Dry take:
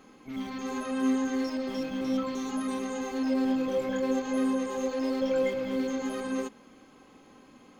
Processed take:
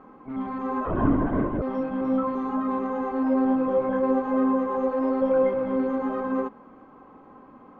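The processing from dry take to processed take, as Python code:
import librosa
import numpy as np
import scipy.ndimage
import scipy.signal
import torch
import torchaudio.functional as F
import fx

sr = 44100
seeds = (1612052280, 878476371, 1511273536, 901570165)

y = fx.lowpass_res(x, sr, hz=1100.0, q=2.0)
y = fx.lpc_vocoder(y, sr, seeds[0], excitation='whisper', order=16, at=(0.85, 1.62))
y = F.gain(torch.from_numpy(y), 4.0).numpy()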